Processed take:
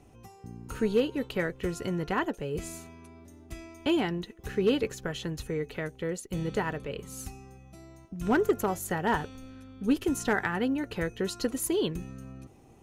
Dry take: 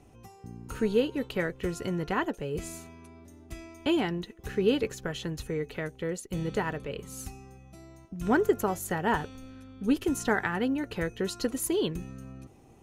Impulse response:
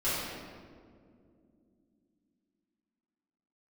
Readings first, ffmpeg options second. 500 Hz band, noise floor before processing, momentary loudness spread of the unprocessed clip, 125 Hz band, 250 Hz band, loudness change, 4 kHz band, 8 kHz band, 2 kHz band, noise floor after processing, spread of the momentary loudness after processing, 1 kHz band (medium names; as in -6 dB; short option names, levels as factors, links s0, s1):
0.0 dB, -55 dBFS, 18 LU, 0.0 dB, 0.0 dB, 0.0 dB, 0.0 dB, 0.0 dB, 0.0 dB, -55 dBFS, 19 LU, -0.5 dB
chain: -af "asoftclip=type=hard:threshold=0.15"